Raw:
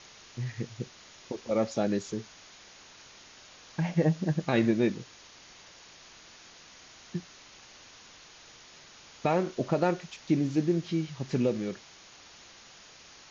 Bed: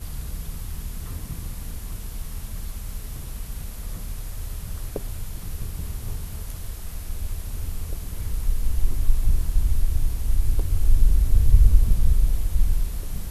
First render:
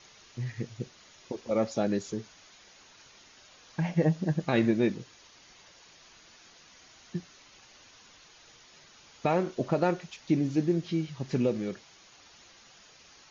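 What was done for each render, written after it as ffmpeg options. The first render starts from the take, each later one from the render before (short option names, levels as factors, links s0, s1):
-af "afftdn=nr=6:nf=-53"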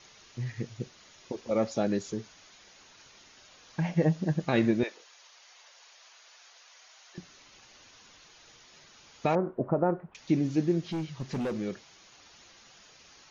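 -filter_complex "[0:a]asettb=1/sr,asplit=3[s0][s1][s2];[s0]atrim=end=4.834[s3];[s1]atrim=start=4.83:end=7.18,asetpts=PTS-STARTPTS,afade=t=in:d=0.004:c=qsin,afade=t=out:st=2.346:d=0.004:c=qsin,highpass=f=560:w=0.5412,highpass=f=560:w=1.3066[s4];[s2]atrim=start=7.176[s5];[s3][s4]acrossfade=d=0.004:c1=hsin:c2=qsin[s6];[s6][s5]acrossfade=d=0.004:c1=qsin:c2=hsin,asettb=1/sr,asplit=3[s7][s8][s9];[s7]atrim=end=9.354[s10];[s8]atrim=start=9.35:end=10.15,asetpts=PTS-STARTPTS,afade=t=in:d=0.004:c=qsin,afade=t=out:st=0.796:d=0.004:c=qsin,lowpass=f=1300:w=0.5412,lowpass=f=1300:w=1.3066[s11];[s9]atrim=start=10.146[s12];[s10][s11]acrossfade=d=0.004:c1=hsin:c2=qsin[s13];[s13][s12]acrossfade=d=0.004:c1=qsin:c2=hsin,asettb=1/sr,asplit=3[s14][s15][s16];[s14]atrim=end=10.914[s17];[s15]atrim=start=10.91:end=11.58,asetpts=PTS-STARTPTS,afade=t=in:d=0.004:c=qsin,afade=t=out:st=0.666:d=0.004:c=qsin,asoftclip=type=hard:threshold=0.0376[s18];[s16]atrim=start=11.576[s19];[s17][s18]acrossfade=d=0.004:c1=hsin:c2=qsin[s20];[s20][s19]acrossfade=d=0.004:c1=qsin:c2=hsin"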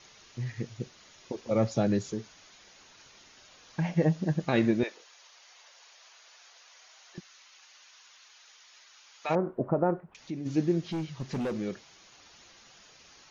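-filter_complex "[0:a]asettb=1/sr,asplit=3[s0][s1][s2];[s0]atrim=end=1.514[s3];[s1]atrim=start=1.51:end=2.1,asetpts=PTS-STARTPTS,afade=t=in:d=0.004:c=qsin,afade=t=out:st=0.586:d=0.004:c=qsin,equalizer=f=120:t=o:w=0.77:g=13[s4];[s2]atrim=start=2.096[s5];[s3][s4]acrossfade=d=0.004:c1=hsin:c2=qsin[s6];[s6][s5]acrossfade=d=0.004:c1=qsin:c2=hsin,asplit=3[s7][s8][s9];[s7]afade=t=out:st=7.19:d=0.02[s10];[s8]highpass=1000,afade=t=in:st=7.19:d=0.02,afade=t=out:st=9.29:d=0.02[s11];[s9]afade=t=in:st=9.29:d=0.02[s12];[s10][s11][s12]amix=inputs=3:normalize=0,asplit=3[s13][s14][s15];[s13]afade=t=out:st=9.99:d=0.02[s16];[s14]acompressor=threshold=0.00282:ratio=1.5:attack=3.2:release=140:knee=1:detection=peak,afade=t=in:st=9.99:d=0.02,afade=t=out:st=10.45:d=0.02[s17];[s15]afade=t=in:st=10.45:d=0.02[s18];[s16][s17][s18]amix=inputs=3:normalize=0"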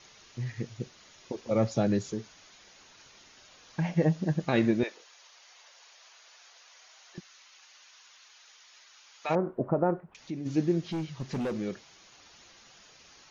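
-af anull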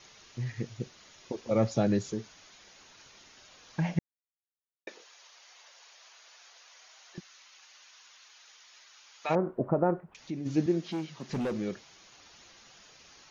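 -filter_complex "[0:a]asettb=1/sr,asplit=3[s0][s1][s2];[s0]atrim=end=10.664[s3];[s1]atrim=start=10.66:end=11.3,asetpts=PTS-STARTPTS,afade=t=in:d=0.004:c=qsin,afade=t=out:st=0.636:d=0.004:c=qsin,highpass=f=180:w=0.5412,highpass=f=180:w=1.3066[s4];[s2]atrim=start=11.296[s5];[s3][s4]acrossfade=d=0.004:c1=hsin:c2=qsin[s6];[s6][s5]acrossfade=d=0.004:c1=qsin:c2=hsin,asplit=3[s7][s8][s9];[s7]atrim=end=3.99,asetpts=PTS-STARTPTS,afade=t=out:st=3.986:d=0.004:c=hsin[s10];[s8]atrim=start=3.99:end=4.87,asetpts=PTS-STARTPTS,volume=0[s11];[s9]atrim=start=4.87,asetpts=PTS-STARTPTS,afade=t=in:d=0.004:c=hsin[s12];[s10][s11][s12]concat=n=3:v=0:a=1"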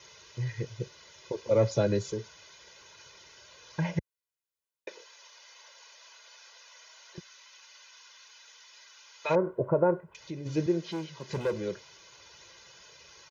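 -af "highpass=59,aecho=1:1:2:0.76"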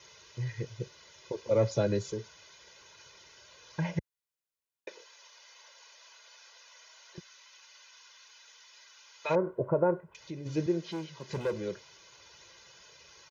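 -af "volume=0.794"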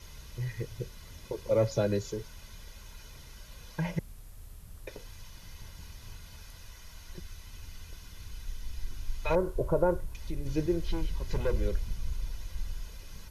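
-filter_complex "[1:a]volume=0.158[s0];[0:a][s0]amix=inputs=2:normalize=0"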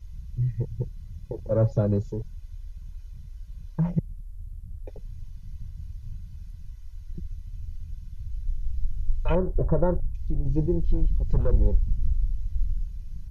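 -af "afwtdn=0.0126,bass=f=250:g=10,treble=f=4000:g=1"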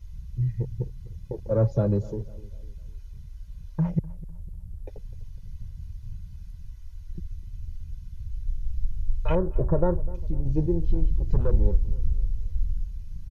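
-filter_complex "[0:a]asplit=2[s0][s1];[s1]adelay=251,lowpass=f=1700:p=1,volume=0.112,asplit=2[s2][s3];[s3]adelay=251,lowpass=f=1700:p=1,volume=0.45,asplit=2[s4][s5];[s5]adelay=251,lowpass=f=1700:p=1,volume=0.45,asplit=2[s6][s7];[s7]adelay=251,lowpass=f=1700:p=1,volume=0.45[s8];[s0][s2][s4][s6][s8]amix=inputs=5:normalize=0"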